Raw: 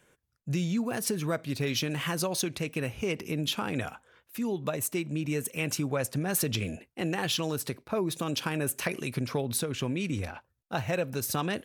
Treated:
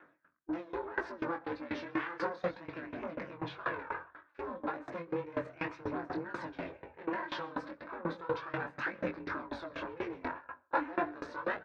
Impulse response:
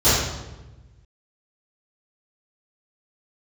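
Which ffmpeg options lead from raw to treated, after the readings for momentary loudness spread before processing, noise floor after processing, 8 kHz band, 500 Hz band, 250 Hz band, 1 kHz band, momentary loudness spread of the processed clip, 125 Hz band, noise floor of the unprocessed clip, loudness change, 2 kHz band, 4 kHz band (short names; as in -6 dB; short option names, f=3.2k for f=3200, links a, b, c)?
6 LU, -67 dBFS, under -35 dB, -6.0 dB, -8.5 dB, 0.0 dB, 7 LU, -17.5 dB, -76 dBFS, -8.0 dB, -3.0 dB, -18.0 dB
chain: -filter_complex "[0:a]asoftclip=type=tanh:threshold=-26.5dB,asplit=2[a][b];[b]adelay=130,highpass=300,lowpass=3.4k,asoftclip=type=hard:threshold=-34.5dB,volume=-7dB[c];[a][c]amix=inputs=2:normalize=0,aeval=exprs='val(0)*sin(2*PI*170*n/s)':c=same,volume=31dB,asoftclip=hard,volume=-31dB,equalizer=f=1.4k:t=o:w=1.4:g=11.5,aphaser=in_gain=1:out_gain=1:delay=4:decay=0.4:speed=0.33:type=triangular,asplit=2[d][e];[1:a]atrim=start_sample=2205,afade=t=out:st=0.38:d=0.01,atrim=end_sample=17199[f];[e][f]afir=irnorm=-1:irlink=0,volume=-37dB[g];[d][g]amix=inputs=2:normalize=0,flanger=delay=19.5:depth=4.5:speed=1.9,highpass=120,equalizer=f=170:t=q:w=4:g=6,equalizer=f=300:t=q:w=4:g=8,equalizer=f=520:t=q:w=4:g=8,equalizer=f=980:t=q:w=4:g=10,equalizer=f=1.6k:t=q:w=4:g=5,equalizer=f=3k:t=q:w=4:g=-9,lowpass=f=3.8k:w=0.5412,lowpass=f=3.8k:w=1.3066,aeval=exprs='val(0)*pow(10,-21*if(lt(mod(4.1*n/s,1),2*abs(4.1)/1000),1-mod(4.1*n/s,1)/(2*abs(4.1)/1000),(mod(4.1*n/s,1)-2*abs(4.1)/1000)/(1-2*abs(4.1)/1000))/20)':c=same,volume=1dB"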